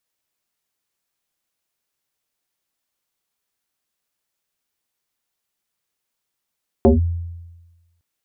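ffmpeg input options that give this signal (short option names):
-f lavfi -i "aevalsrc='0.447*pow(10,-3*t/1.2)*sin(2*PI*85.2*t+3.7*clip(1-t/0.15,0,1)*sin(2*PI*1.83*85.2*t))':d=1.16:s=44100"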